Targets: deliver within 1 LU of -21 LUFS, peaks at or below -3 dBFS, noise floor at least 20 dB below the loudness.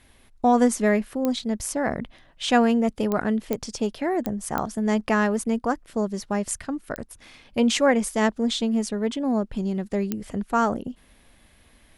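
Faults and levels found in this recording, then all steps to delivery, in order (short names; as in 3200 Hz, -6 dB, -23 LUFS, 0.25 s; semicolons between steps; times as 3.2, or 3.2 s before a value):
clicks 7; loudness -24.5 LUFS; peak -5.5 dBFS; loudness target -21.0 LUFS
-> de-click; gain +3.5 dB; limiter -3 dBFS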